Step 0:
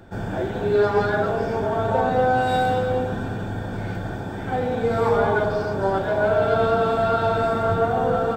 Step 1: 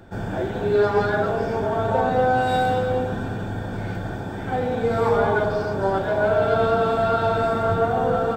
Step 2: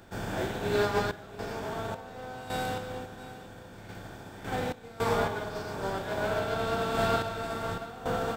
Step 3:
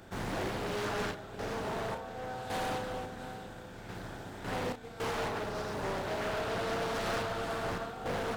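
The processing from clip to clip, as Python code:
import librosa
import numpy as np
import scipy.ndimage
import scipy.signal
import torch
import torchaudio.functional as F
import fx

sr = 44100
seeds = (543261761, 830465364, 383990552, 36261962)

y1 = x
y2 = fx.spec_flatten(y1, sr, power=0.68)
y2 = fx.tremolo_random(y2, sr, seeds[0], hz=3.6, depth_pct=90)
y2 = y2 + 10.0 ** (-16.5 / 20.0) * np.pad(y2, (int(681 * sr / 1000.0), 0))[:len(y2)]
y2 = y2 * librosa.db_to_amplitude(-6.0)
y3 = np.clip(y2, -10.0 ** (-32.5 / 20.0), 10.0 ** (-32.5 / 20.0))
y3 = fx.doubler(y3, sr, ms=33.0, db=-7.0)
y3 = fx.doppler_dist(y3, sr, depth_ms=0.58)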